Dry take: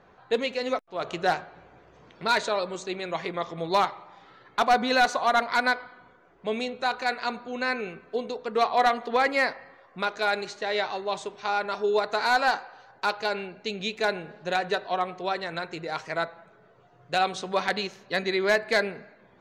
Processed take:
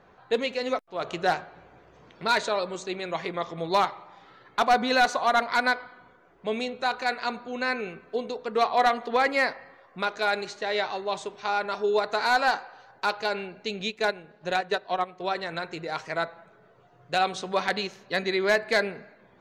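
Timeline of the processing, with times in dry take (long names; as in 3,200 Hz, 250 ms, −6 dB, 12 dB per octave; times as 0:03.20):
0:13.77–0:15.35: transient designer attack 0 dB, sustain −9 dB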